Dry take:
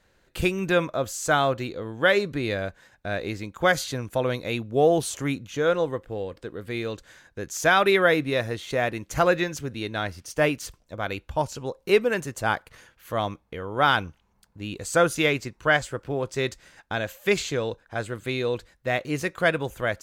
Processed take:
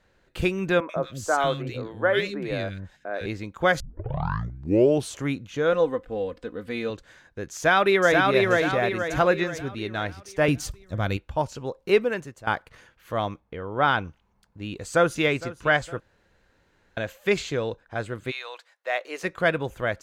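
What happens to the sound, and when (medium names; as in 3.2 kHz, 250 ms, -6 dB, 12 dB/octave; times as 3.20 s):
0.80–3.26 s: three bands offset in time mids, highs, lows 90/160 ms, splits 280/1800 Hz
3.80 s: tape start 1.27 s
5.72–6.90 s: comb 4 ms
7.54–8.26 s: echo throw 480 ms, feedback 45%, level -2 dB
10.48–11.17 s: tone controls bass +12 dB, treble +9 dB
11.99–12.47 s: fade out, to -16 dB
13.40–14.05 s: treble shelf 4.2 kHz -8.5 dB
14.69–15.25 s: echo throw 460 ms, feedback 50%, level -17 dB
16.00–16.97 s: room tone
18.30–19.23 s: high-pass 940 Hz -> 400 Hz 24 dB/octave
whole clip: low-pass 4 kHz 6 dB/octave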